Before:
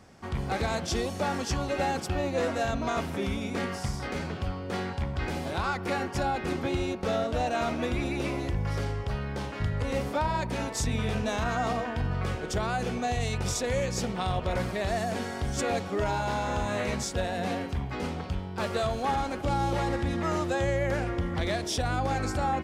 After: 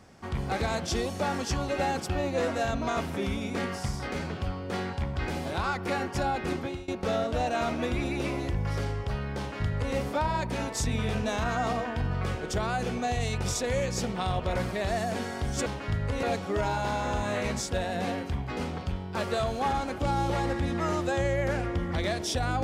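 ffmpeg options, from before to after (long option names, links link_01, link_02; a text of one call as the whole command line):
ffmpeg -i in.wav -filter_complex "[0:a]asplit=4[link_01][link_02][link_03][link_04];[link_01]atrim=end=6.88,asetpts=PTS-STARTPTS,afade=type=out:start_time=6.53:duration=0.35:silence=0.0891251[link_05];[link_02]atrim=start=6.88:end=15.662,asetpts=PTS-STARTPTS,afade=type=in:duration=0.004:curve=hsin:silence=0.0891251[link_06];[link_03]atrim=start=9.378:end=9.952[link_07];[link_04]atrim=start=15.658[link_08];[link_05][link_06]concat=n=2:v=0:a=1[link_09];[link_09][link_07]acrossfade=duration=0.004:curve1=hsin:curve2=hsin[link_10];[link_10][link_08]acrossfade=duration=0.004:curve1=hsin:curve2=hsin" out.wav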